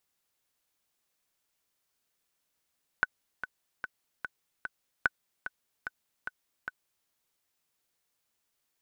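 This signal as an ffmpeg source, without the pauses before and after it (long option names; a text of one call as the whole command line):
ffmpeg -f lavfi -i "aevalsrc='pow(10,(-10.5-11.5*gte(mod(t,5*60/148),60/148))/20)*sin(2*PI*1500*mod(t,60/148))*exp(-6.91*mod(t,60/148)/0.03)':duration=4.05:sample_rate=44100" out.wav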